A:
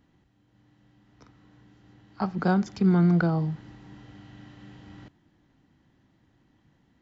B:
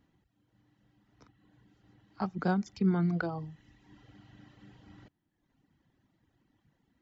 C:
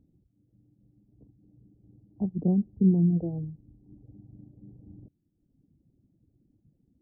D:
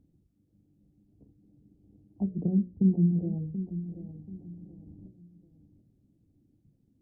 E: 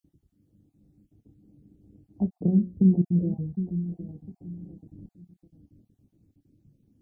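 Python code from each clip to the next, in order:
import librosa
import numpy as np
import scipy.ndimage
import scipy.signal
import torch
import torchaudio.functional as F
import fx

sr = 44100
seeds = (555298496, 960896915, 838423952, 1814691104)

y1 = fx.dereverb_blind(x, sr, rt60_s=1.1)
y1 = y1 * 10.0 ** (-5.0 / 20.0)
y2 = scipy.ndimage.gaussian_filter1d(y1, 20.0, mode='constant')
y2 = y2 * 10.0 ** (7.5 / 20.0)
y3 = fx.hum_notches(y2, sr, base_hz=60, count=10)
y3 = fx.env_lowpass_down(y3, sr, base_hz=370.0, full_db=-25.5)
y3 = fx.echo_feedback(y3, sr, ms=733, feedback_pct=33, wet_db=-11.5)
y4 = fx.spec_dropout(y3, sr, seeds[0], share_pct=27)
y4 = fx.doubler(y4, sr, ms=28.0, db=-13.5)
y4 = y4 * 10.0 ** (4.5 / 20.0)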